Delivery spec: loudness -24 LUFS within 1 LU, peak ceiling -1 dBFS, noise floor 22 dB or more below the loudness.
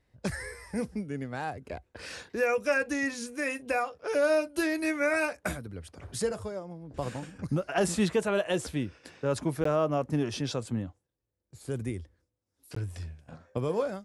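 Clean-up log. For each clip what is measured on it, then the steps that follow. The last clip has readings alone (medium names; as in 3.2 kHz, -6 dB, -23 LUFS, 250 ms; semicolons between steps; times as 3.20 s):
dropouts 2; longest dropout 14 ms; loudness -31.0 LUFS; peak level -14.5 dBFS; loudness target -24.0 LUFS
-> interpolate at 9.64/12.75 s, 14 ms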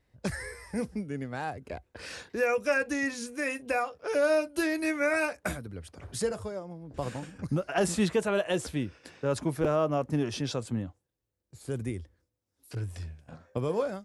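dropouts 0; loudness -31.0 LUFS; peak level -14.5 dBFS; loudness target -24.0 LUFS
-> trim +7 dB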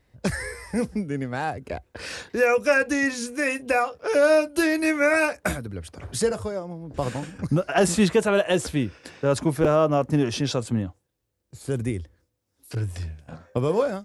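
loudness -24.0 LUFS; peak level -7.5 dBFS; noise floor -76 dBFS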